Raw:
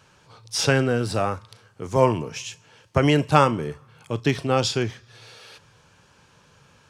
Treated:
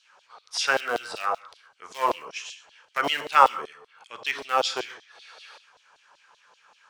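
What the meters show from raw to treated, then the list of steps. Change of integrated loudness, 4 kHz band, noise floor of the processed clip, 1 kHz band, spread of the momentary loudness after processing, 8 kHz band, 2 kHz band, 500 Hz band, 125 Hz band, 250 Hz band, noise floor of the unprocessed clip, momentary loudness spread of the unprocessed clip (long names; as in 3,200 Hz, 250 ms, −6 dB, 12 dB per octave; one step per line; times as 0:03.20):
−3.0 dB, −1.0 dB, −64 dBFS, +1.5 dB, 21 LU, −5.0 dB, +1.0 dB, −8.0 dB, below −30 dB, −18.5 dB, −57 dBFS, 15 LU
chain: low-pass filter 8,700 Hz 12 dB per octave
tilt shelving filter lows +5 dB
in parallel at −9.5 dB: comparator with hysteresis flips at −13 dBFS
on the sum: reverb whose tail is shaped and stops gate 160 ms flat, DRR 10.5 dB
auto-filter high-pass saw down 5.2 Hz 660–4,100 Hz
level −1 dB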